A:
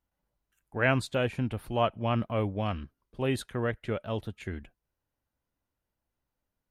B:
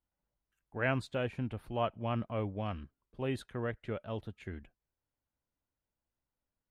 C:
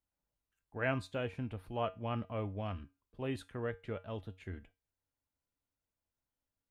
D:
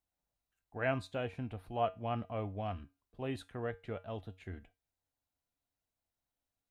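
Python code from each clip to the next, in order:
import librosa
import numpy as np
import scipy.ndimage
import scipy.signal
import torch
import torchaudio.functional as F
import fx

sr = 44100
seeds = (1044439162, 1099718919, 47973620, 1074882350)

y1 = fx.high_shelf(x, sr, hz=5300.0, db=-9.0)
y1 = y1 * librosa.db_to_amplitude(-6.0)
y2 = fx.comb_fb(y1, sr, f0_hz=93.0, decay_s=0.27, harmonics='odd', damping=0.0, mix_pct=60)
y2 = y2 * librosa.db_to_amplitude(3.5)
y3 = fx.small_body(y2, sr, hz=(720.0, 3900.0), ring_ms=35, db=9)
y3 = y3 * librosa.db_to_amplitude(-1.0)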